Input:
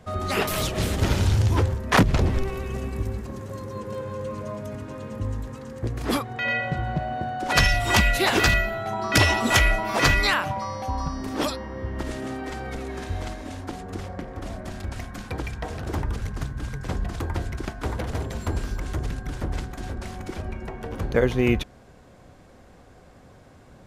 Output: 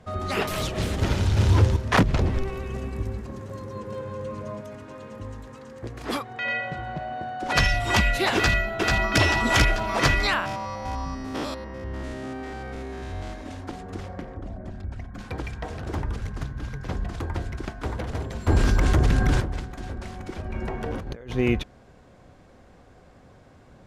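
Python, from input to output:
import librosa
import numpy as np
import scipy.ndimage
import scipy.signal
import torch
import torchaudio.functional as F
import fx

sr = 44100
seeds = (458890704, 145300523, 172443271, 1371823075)

y = fx.echo_throw(x, sr, start_s=1.13, length_s=0.4, ms=230, feedback_pct=25, wet_db=0.0)
y = fx.low_shelf(y, sr, hz=260.0, db=-9.0, at=(4.61, 7.42))
y = fx.echo_throw(y, sr, start_s=8.35, length_s=0.85, ms=440, feedback_pct=55, wet_db=-2.0)
y = fx.spec_steps(y, sr, hold_ms=100, at=(10.4, 13.31), fade=0.02)
y = fx.envelope_sharpen(y, sr, power=1.5, at=(14.34, 15.18), fade=0.02)
y = fx.peak_eq(y, sr, hz=8300.0, db=-7.0, octaves=0.29, at=(16.43, 16.93))
y = fx.env_flatten(y, sr, amount_pct=70, at=(18.47, 19.4), fade=0.02)
y = fx.over_compress(y, sr, threshold_db=-33.0, ratio=-1.0, at=(20.45, 21.31), fade=0.02)
y = fx.high_shelf(y, sr, hz=10000.0, db=-11.0)
y = y * librosa.db_to_amplitude(-1.5)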